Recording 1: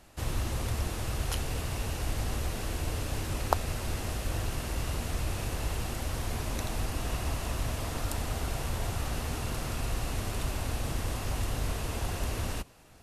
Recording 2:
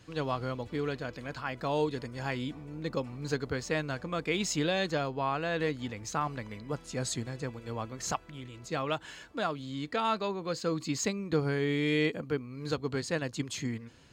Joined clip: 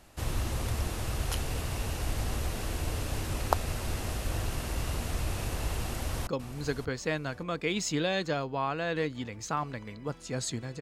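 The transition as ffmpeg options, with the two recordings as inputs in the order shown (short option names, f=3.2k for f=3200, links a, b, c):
-filter_complex "[0:a]apad=whole_dur=10.81,atrim=end=10.81,atrim=end=6.272[a];[1:a]atrim=start=2.908:end=7.45[b];[a][b]acrossfade=d=0.004:c1=hsin:c2=hsin,asplit=2[c][d];[d]afade=t=in:st=5.81:d=0.01,afade=t=out:st=6.27:d=0.01,aecho=0:1:580|1160|1740:0.266073|0.0532145|0.0106429[e];[c][e]amix=inputs=2:normalize=0"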